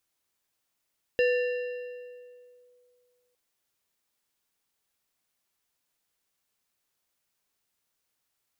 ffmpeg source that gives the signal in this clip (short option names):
-f lavfi -i "aevalsrc='0.112*pow(10,-3*t/2.35)*sin(2*PI*493*t+0.62*clip(1-t/1.53,0,1)*sin(2*PI*4.59*493*t))':d=2.16:s=44100"